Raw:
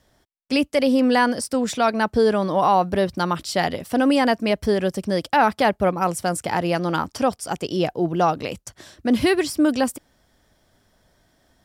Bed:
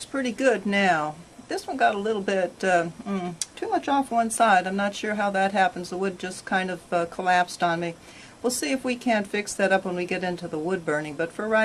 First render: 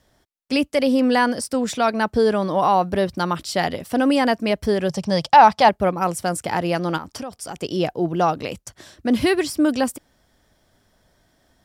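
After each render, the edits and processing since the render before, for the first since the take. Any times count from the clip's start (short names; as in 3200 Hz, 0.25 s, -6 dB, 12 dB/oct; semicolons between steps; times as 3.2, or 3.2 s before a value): 4.89–5.69 EQ curve 100 Hz 0 dB, 150 Hz +8 dB, 300 Hz -7 dB, 890 Hz +9 dB, 1400 Hz 0 dB, 5700 Hz +7 dB, 9000 Hz -2 dB, 13000 Hz -7 dB; 6.97–7.56 compressor 10:1, threshold -27 dBFS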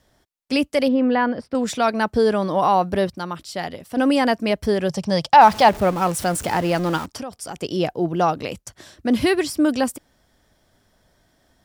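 0.88–1.55 air absorption 400 m; 3.1–3.97 gain -6.5 dB; 5.41–7.06 zero-crossing step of -28.5 dBFS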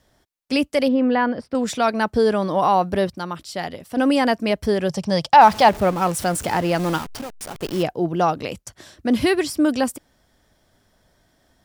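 6.79–7.83 level-crossing sampler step -30.5 dBFS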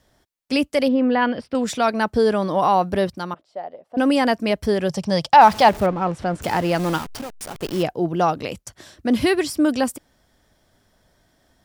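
1.21–1.62 bell 2900 Hz +13.5 dB -> +4 dB 0.87 oct; 3.34–3.97 band-pass 630 Hz, Q 2.6; 5.86–6.42 tape spacing loss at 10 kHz 26 dB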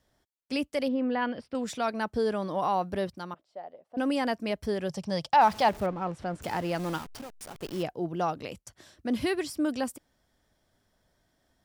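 gain -10 dB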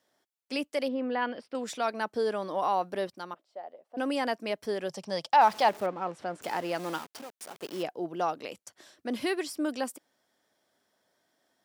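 HPF 300 Hz 12 dB/oct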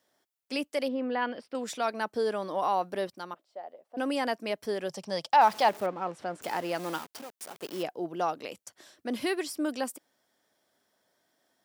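high shelf 11000 Hz +5 dB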